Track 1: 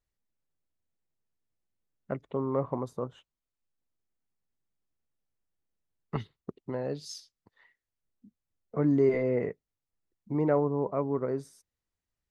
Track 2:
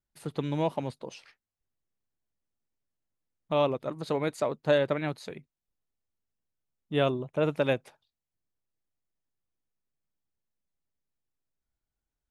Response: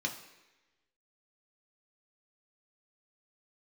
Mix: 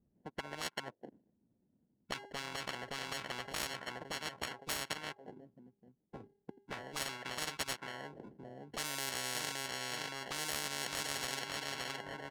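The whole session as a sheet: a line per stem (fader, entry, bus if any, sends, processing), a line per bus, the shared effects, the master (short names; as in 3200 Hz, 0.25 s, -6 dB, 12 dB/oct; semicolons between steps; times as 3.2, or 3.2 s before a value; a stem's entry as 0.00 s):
-1.0 dB, 0.00 s, no send, echo send -7.5 dB, de-hum 396.7 Hz, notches 3; low-pass opened by the level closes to 1800 Hz, open at -25 dBFS; auto duck -20 dB, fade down 1.75 s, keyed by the second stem
+2.0 dB, 0.00 s, no send, no echo send, upward expander 2.5:1, over -46 dBFS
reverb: off
echo: feedback echo 0.569 s, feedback 34%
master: sample-and-hold 36×; auto-wah 210–1300 Hz, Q 2.3, up, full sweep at -34.5 dBFS; spectral compressor 10:1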